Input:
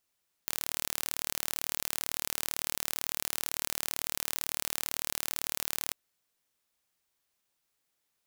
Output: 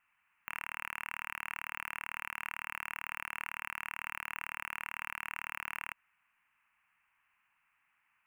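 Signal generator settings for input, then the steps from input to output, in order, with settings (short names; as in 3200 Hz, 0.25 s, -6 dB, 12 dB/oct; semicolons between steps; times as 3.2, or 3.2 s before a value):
pulse train 37.9/s, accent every 0, -5 dBFS 5.44 s
EQ curve 210 Hz 0 dB, 500 Hz -14 dB, 960 Hz +13 dB, 2700 Hz +14 dB, 3900 Hz -26 dB, 8900 Hz -11 dB; limiter -21.5 dBFS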